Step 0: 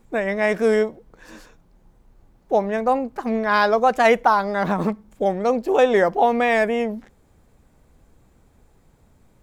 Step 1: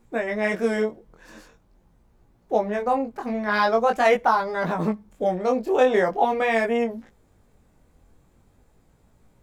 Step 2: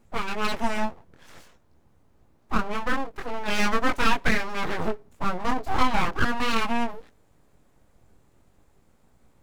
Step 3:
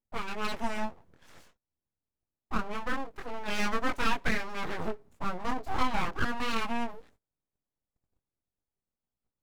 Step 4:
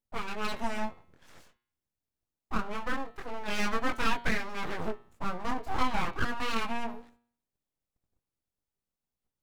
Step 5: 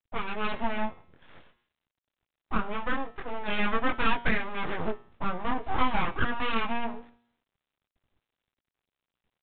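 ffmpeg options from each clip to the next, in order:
-af "flanger=delay=17:depth=6.8:speed=0.44"
-af "aeval=exprs='abs(val(0))':c=same"
-af "agate=range=0.0501:threshold=0.00282:ratio=16:detection=peak,volume=0.473"
-af "bandreject=f=118.6:t=h:w=4,bandreject=f=237.2:t=h:w=4,bandreject=f=355.8:t=h:w=4,bandreject=f=474.4:t=h:w=4,bandreject=f=593:t=h:w=4,bandreject=f=711.6:t=h:w=4,bandreject=f=830.2:t=h:w=4,bandreject=f=948.8:t=h:w=4,bandreject=f=1067.4:t=h:w=4,bandreject=f=1186:t=h:w=4,bandreject=f=1304.6:t=h:w=4,bandreject=f=1423.2:t=h:w=4,bandreject=f=1541.8:t=h:w=4,bandreject=f=1660.4:t=h:w=4,bandreject=f=1779:t=h:w=4,bandreject=f=1897.6:t=h:w=4,bandreject=f=2016.2:t=h:w=4,bandreject=f=2134.8:t=h:w=4,bandreject=f=2253.4:t=h:w=4,bandreject=f=2372:t=h:w=4,bandreject=f=2490.6:t=h:w=4,bandreject=f=2609.2:t=h:w=4,bandreject=f=2727.8:t=h:w=4,bandreject=f=2846.4:t=h:w=4,bandreject=f=2965:t=h:w=4,bandreject=f=3083.6:t=h:w=4,bandreject=f=3202.2:t=h:w=4,bandreject=f=3320.8:t=h:w=4,bandreject=f=3439.4:t=h:w=4,bandreject=f=3558:t=h:w=4,bandreject=f=3676.6:t=h:w=4,bandreject=f=3795.2:t=h:w=4,bandreject=f=3913.8:t=h:w=4,bandreject=f=4032.4:t=h:w=4,bandreject=f=4151:t=h:w=4,bandreject=f=4269.6:t=h:w=4,bandreject=f=4388.2:t=h:w=4,bandreject=f=4506.8:t=h:w=4"
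-af "volume=1.41" -ar 8000 -c:a pcm_mulaw

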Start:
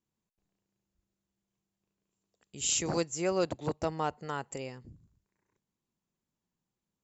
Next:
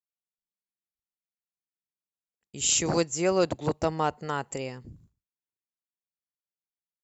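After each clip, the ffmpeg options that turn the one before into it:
-af "agate=range=0.0224:threshold=0.00126:ratio=3:detection=peak,volume=1.88"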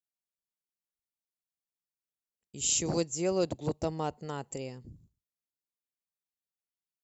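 -af "equalizer=f=1500:t=o:w=1.8:g=-9.5,volume=0.708"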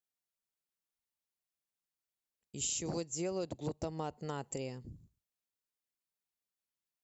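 -af "acompressor=threshold=0.02:ratio=6"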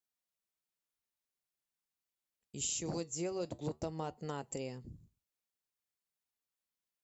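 -af "flanger=delay=3.8:depth=4.1:regen=-78:speed=0.45:shape=sinusoidal,volume=1.5"

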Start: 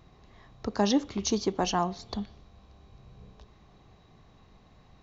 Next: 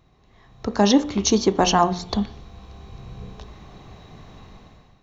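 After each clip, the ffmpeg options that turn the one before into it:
-af "bandreject=f=4800:w=15,dynaudnorm=f=230:g=5:m=6.31,bandreject=f=59.3:t=h:w=4,bandreject=f=118.6:t=h:w=4,bandreject=f=177.9:t=h:w=4,bandreject=f=237.2:t=h:w=4,bandreject=f=296.5:t=h:w=4,bandreject=f=355.8:t=h:w=4,bandreject=f=415.1:t=h:w=4,bandreject=f=474.4:t=h:w=4,bandreject=f=533.7:t=h:w=4,bandreject=f=593:t=h:w=4,bandreject=f=652.3:t=h:w=4,bandreject=f=711.6:t=h:w=4,bandreject=f=770.9:t=h:w=4,bandreject=f=830.2:t=h:w=4,bandreject=f=889.5:t=h:w=4,bandreject=f=948.8:t=h:w=4,bandreject=f=1008.1:t=h:w=4,bandreject=f=1067.4:t=h:w=4,bandreject=f=1126.7:t=h:w=4,bandreject=f=1186:t=h:w=4,bandreject=f=1245.3:t=h:w=4,bandreject=f=1304.6:t=h:w=4,bandreject=f=1363.9:t=h:w=4,bandreject=f=1423.2:t=h:w=4,bandreject=f=1482.5:t=h:w=4,bandreject=f=1541.8:t=h:w=4,bandreject=f=1601.1:t=h:w=4,bandreject=f=1660.4:t=h:w=4,bandreject=f=1719.7:t=h:w=4,bandreject=f=1779:t=h:w=4,bandreject=f=1838.3:t=h:w=4,bandreject=f=1897.6:t=h:w=4,volume=0.794"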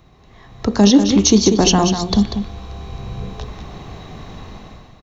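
-filter_complex "[0:a]acrossover=split=400|3000[s0][s1][s2];[s1]acompressor=threshold=0.0112:ratio=2[s3];[s0][s3][s2]amix=inputs=3:normalize=0,aecho=1:1:192:0.376,alimiter=level_in=3.16:limit=0.891:release=50:level=0:latency=1,volume=0.891"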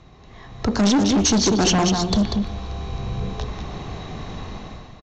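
-filter_complex "[0:a]aresample=16000,asoftclip=type=tanh:threshold=0.15,aresample=44100,asplit=2[s0][s1];[s1]adelay=340,highpass=300,lowpass=3400,asoftclip=type=hard:threshold=0.106,volume=0.1[s2];[s0][s2]amix=inputs=2:normalize=0,volume=1.26"

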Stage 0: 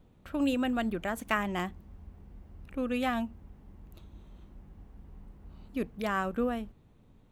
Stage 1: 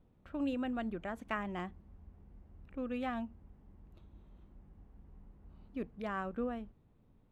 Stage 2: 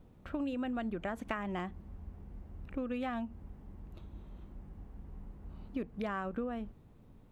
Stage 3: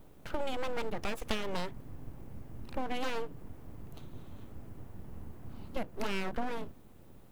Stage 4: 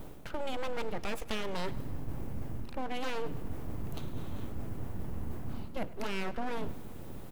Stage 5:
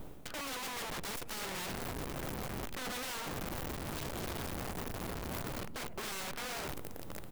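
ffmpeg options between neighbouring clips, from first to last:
-af "aemphasis=mode=reproduction:type=75fm,volume=0.422"
-af "acompressor=threshold=0.00794:ratio=6,volume=2.66"
-af "crystalizer=i=2:c=0,aeval=exprs='abs(val(0))':c=same,volume=1.68"
-af "areverse,acompressor=threshold=0.00794:ratio=5,areverse,aecho=1:1:102|204|306|408|510:0.112|0.064|0.0365|0.0208|0.0118,volume=3.55"
-af "aeval=exprs='(mod(47.3*val(0)+1,2)-1)/47.3':c=same,volume=0.794"

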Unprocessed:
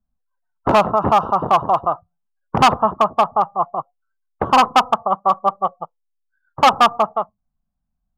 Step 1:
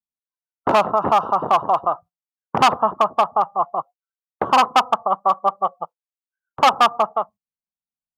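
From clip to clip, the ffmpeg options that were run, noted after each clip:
-filter_complex "[0:a]highpass=f=320:p=1,agate=range=0.0891:threshold=0.0126:ratio=16:detection=peak,asplit=2[s0][s1];[s1]acompressor=threshold=0.0891:ratio=6,volume=0.891[s2];[s0][s2]amix=inputs=2:normalize=0,volume=0.668"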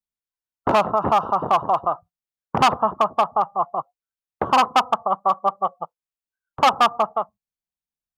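-af "lowshelf=f=110:g=11,volume=0.794"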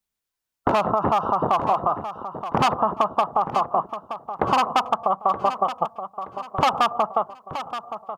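-af "alimiter=limit=0.168:level=0:latency=1:release=103,acompressor=threshold=0.0501:ratio=6,aecho=1:1:924|1848|2772|3696:0.282|0.0986|0.0345|0.0121,volume=2.82"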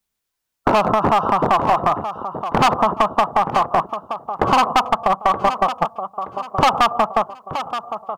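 -af "aeval=exprs='clip(val(0),-1,0.133)':c=same,volume=1.88"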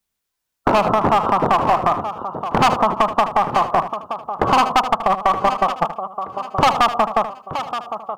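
-af "aecho=1:1:77:0.251"

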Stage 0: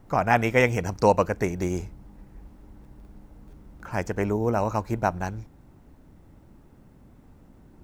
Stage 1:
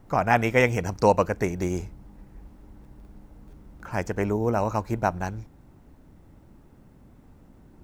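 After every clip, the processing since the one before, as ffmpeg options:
-af anull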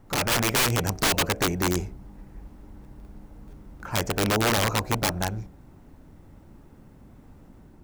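-af "aeval=exprs='(mod(8.91*val(0)+1,2)-1)/8.91':c=same,bandreject=f=62.89:t=h:w=4,bandreject=f=125.78:t=h:w=4,bandreject=f=188.67:t=h:w=4,bandreject=f=251.56:t=h:w=4,bandreject=f=314.45:t=h:w=4,bandreject=f=377.34:t=h:w=4,bandreject=f=440.23:t=h:w=4,bandreject=f=503.12:t=h:w=4,bandreject=f=566.01:t=h:w=4,bandreject=f=628.9:t=h:w=4,bandreject=f=691.79:t=h:w=4,bandreject=f=754.68:t=h:w=4,dynaudnorm=f=130:g=5:m=1.41"

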